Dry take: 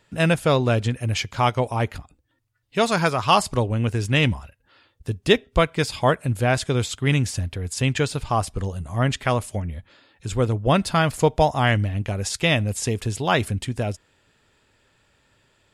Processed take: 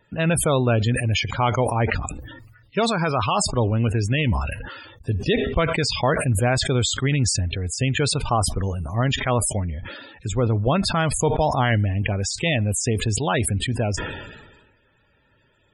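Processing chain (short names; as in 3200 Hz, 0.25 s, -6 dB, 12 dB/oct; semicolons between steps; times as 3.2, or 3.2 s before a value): limiter -12 dBFS, peak gain reduction 9.5 dB; loudest bins only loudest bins 64; sustainer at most 45 dB/s; gain +1.5 dB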